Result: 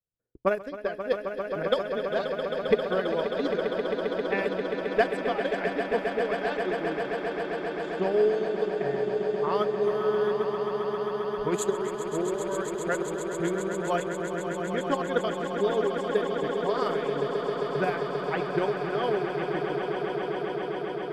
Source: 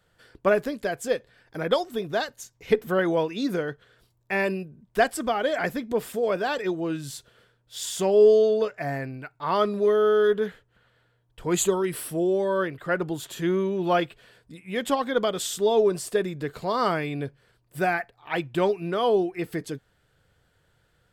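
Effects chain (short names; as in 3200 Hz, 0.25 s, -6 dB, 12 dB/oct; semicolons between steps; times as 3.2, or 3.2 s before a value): low-pass opened by the level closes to 560 Hz, open at -19 dBFS; gate -55 dBFS, range -21 dB; transient shaper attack +7 dB, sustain -11 dB; on a send: swelling echo 0.133 s, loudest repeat 8, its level -9.5 dB; on the sum: gain -8.5 dB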